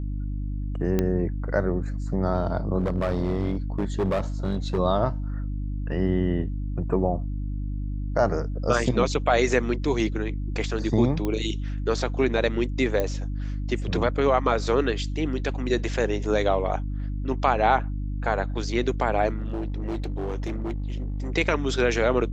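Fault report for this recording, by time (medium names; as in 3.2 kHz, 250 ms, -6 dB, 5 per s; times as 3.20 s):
hum 50 Hz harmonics 6 -29 dBFS
0.99 s: pop -11 dBFS
2.78–4.79 s: clipped -20 dBFS
11.25 s: pop -16 dBFS
13.00 s: pop -13 dBFS
19.36–21.30 s: clipped -25 dBFS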